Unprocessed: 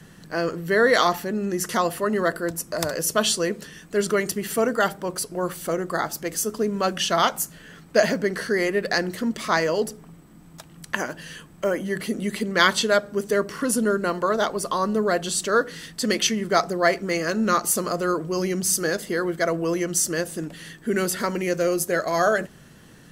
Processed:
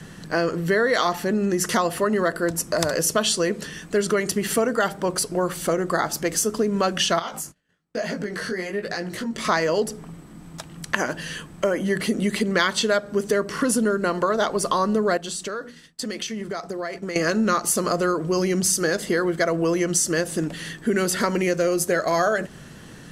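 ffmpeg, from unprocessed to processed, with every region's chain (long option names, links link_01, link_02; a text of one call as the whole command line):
ffmpeg -i in.wav -filter_complex "[0:a]asettb=1/sr,asplit=3[link_01][link_02][link_03];[link_01]atrim=end=7.194[link_04];[link_02]atrim=start=7.19:end=9.45,asetpts=PTS-STARTPTS,afade=type=in:duration=0.004:curve=qsin,afade=type=out:start_time=2.256:duration=0.004:curve=qsin,agate=range=-34dB:threshold=-41dB:ratio=16:release=100:detection=peak,acompressor=threshold=-29dB:ratio=4:attack=3.2:release=140:knee=1:detection=peak,flanger=delay=17.5:depth=4.5:speed=1.1[link_05];[link_03]atrim=start=9.446[link_06];[link_04][link_05]acrossfade=duration=0.004:curve1=hsin:curve2=qsin[link_07];[link_07][link_06]acrossfade=duration=0.004:curve1=qsin:curve2=hsin,asettb=1/sr,asplit=3[link_08][link_09][link_10];[link_08]atrim=end=15.174[link_11];[link_09]atrim=start=15.17:end=17.16,asetpts=PTS-STARTPTS,afade=type=in:duration=0.004:curve=qsin,afade=type=out:start_time=1.986:duration=0.004:curve=qsin,agate=range=-33dB:threshold=-28dB:ratio=3:release=100:detection=peak,bandreject=frequency=60:width_type=h:width=6,bandreject=frequency=120:width_type=h:width=6,bandreject=frequency=180:width_type=h:width=6,bandreject=frequency=240:width_type=h:width=6,acompressor=threshold=-32dB:ratio=16:attack=3.2:release=140:knee=1:detection=peak[link_12];[link_10]atrim=start=17.156[link_13];[link_11][link_12]acrossfade=duration=0.004:curve1=hsin:curve2=qsin[link_14];[link_14][link_13]acrossfade=duration=0.004:curve1=qsin:curve2=hsin,lowpass=11000,acompressor=threshold=-25dB:ratio=4,volume=6.5dB" out.wav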